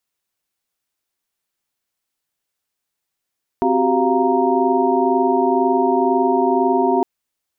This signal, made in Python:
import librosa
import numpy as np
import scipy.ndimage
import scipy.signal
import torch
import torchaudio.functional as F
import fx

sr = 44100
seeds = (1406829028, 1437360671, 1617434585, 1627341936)

y = fx.chord(sr, length_s=3.41, notes=(60, 66, 67, 77, 82), wave='sine', level_db=-20.0)